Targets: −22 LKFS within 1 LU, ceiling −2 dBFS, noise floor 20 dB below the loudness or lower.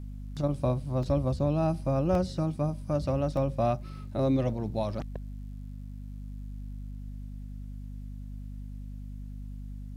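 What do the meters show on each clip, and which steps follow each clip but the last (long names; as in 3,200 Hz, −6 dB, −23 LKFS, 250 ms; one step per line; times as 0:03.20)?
number of dropouts 3; longest dropout 1.8 ms; mains hum 50 Hz; hum harmonics up to 250 Hz; level of the hum −37 dBFS; integrated loudness −29.5 LKFS; sample peak −14.5 dBFS; target loudness −22.0 LKFS
→ repair the gap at 0:01.03/0:02.15/0:03.37, 1.8 ms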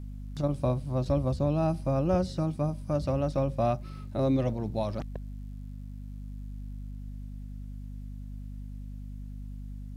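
number of dropouts 0; mains hum 50 Hz; hum harmonics up to 250 Hz; level of the hum −37 dBFS
→ mains-hum notches 50/100/150/200/250 Hz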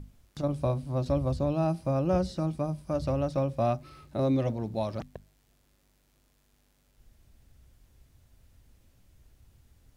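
mains hum none found; integrated loudness −30.0 LKFS; sample peak −14.5 dBFS; target loudness −22.0 LKFS
→ level +8 dB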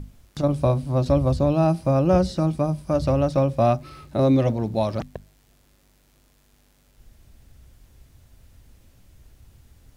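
integrated loudness −22.0 LKFS; sample peak −6.5 dBFS; background noise floor −60 dBFS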